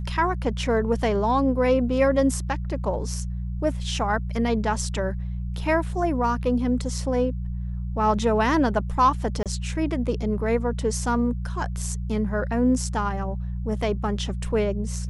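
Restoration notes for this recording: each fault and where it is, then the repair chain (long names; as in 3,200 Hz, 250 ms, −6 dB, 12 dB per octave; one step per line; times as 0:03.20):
mains hum 60 Hz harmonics 3 −29 dBFS
0:09.43–0:09.46: drop-out 27 ms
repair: hum removal 60 Hz, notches 3
repair the gap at 0:09.43, 27 ms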